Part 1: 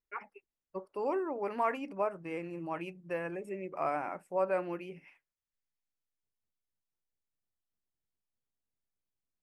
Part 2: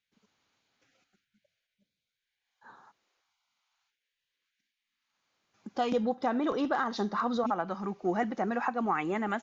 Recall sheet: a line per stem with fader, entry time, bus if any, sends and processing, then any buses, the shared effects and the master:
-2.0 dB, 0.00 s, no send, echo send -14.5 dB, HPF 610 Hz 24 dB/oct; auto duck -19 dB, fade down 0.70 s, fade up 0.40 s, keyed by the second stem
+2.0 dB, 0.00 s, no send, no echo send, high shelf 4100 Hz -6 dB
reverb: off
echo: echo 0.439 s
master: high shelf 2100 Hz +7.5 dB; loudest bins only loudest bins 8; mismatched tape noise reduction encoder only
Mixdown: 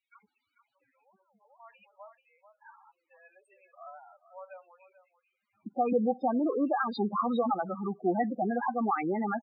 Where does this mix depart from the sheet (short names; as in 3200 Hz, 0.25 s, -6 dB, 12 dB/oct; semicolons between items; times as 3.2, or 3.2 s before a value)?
stem 1 -2.0 dB -> -12.5 dB; master: missing mismatched tape noise reduction encoder only